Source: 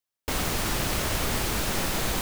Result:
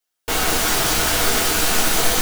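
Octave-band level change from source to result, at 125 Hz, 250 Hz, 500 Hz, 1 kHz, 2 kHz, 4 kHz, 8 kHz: +1.0, +5.0, +8.0, +9.0, +10.0, +10.5, +11.5 decibels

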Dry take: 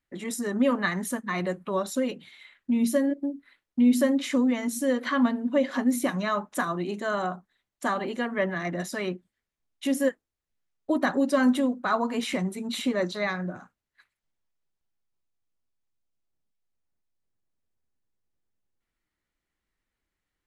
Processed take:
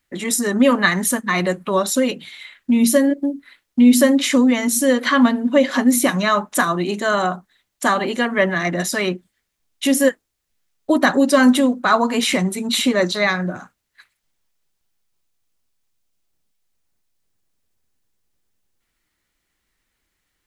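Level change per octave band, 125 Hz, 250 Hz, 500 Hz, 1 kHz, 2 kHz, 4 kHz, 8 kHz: +8.5, +8.5, +9.0, +10.0, +11.0, +13.5, +15.0 decibels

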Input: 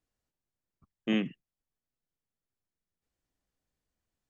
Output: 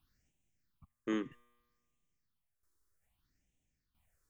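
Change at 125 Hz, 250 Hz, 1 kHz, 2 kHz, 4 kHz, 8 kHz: −12.0 dB, −7.0 dB, −0.5 dB, −7.5 dB, −12.5 dB, can't be measured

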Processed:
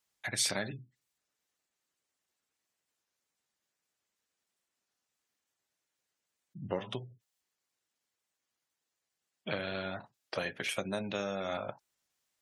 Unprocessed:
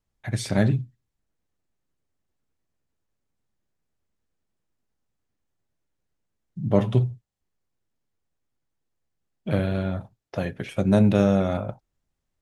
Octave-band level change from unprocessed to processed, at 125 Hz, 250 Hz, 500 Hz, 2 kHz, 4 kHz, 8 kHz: −22.0 dB, −19.0 dB, −11.5 dB, −2.0 dB, +2.5 dB, can't be measured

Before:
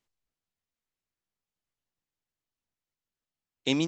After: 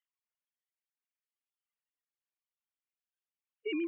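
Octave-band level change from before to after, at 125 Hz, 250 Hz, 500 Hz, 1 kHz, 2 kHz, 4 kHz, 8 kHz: below −40 dB, −7.0 dB, −3.5 dB, −19.5 dB, −6.5 dB, −15.0 dB, can't be measured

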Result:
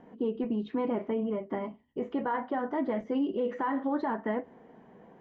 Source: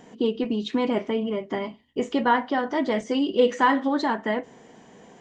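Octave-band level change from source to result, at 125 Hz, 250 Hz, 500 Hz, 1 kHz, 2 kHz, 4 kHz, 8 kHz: −4.5 dB, −6.0 dB, −7.5 dB, −9.0 dB, −12.5 dB, −19.5 dB, can't be measured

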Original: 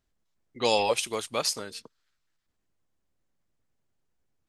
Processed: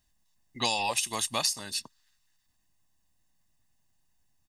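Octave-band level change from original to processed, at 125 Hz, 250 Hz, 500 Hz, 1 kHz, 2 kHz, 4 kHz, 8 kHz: 0.0, −3.0, −10.5, −2.0, 0.0, +1.0, +3.5 decibels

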